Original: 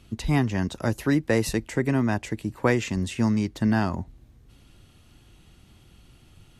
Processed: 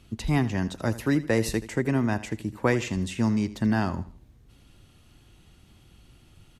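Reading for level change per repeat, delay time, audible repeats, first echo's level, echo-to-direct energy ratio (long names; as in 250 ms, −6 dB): −9.5 dB, 80 ms, 3, −16.0 dB, −15.5 dB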